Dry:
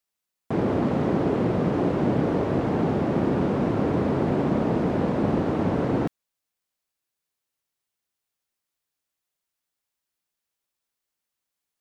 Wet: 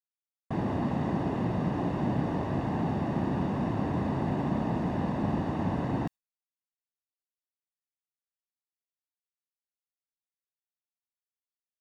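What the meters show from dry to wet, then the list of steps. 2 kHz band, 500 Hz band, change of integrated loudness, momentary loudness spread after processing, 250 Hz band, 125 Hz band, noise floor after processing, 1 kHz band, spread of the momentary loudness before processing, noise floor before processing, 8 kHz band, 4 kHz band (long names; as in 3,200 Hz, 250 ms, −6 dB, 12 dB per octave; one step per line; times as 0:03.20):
−5.5 dB, −10.5 dB, −6.0 dB, 1 LU, −6.0 dB, −4.0 dB, below −85 dBFS, −4.0 dB, 1 LU, −85 dBFS, can't be measured, −5.5 dB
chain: noise gate with hold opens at −22 dBFS
comb filter 1.1 ms, depth 53%
level −6.5 dB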